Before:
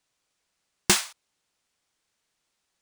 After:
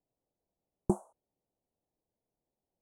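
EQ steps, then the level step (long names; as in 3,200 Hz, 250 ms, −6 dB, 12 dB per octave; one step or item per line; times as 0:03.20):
inverse Chebyshev band-stop filter 1,800–5,100 Hz, stop band 60 dB
head-to-tape spacing loss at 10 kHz 28 dB
parametric band 5,200 Hz +12.5 dB 2.1 octaves
0.0 dB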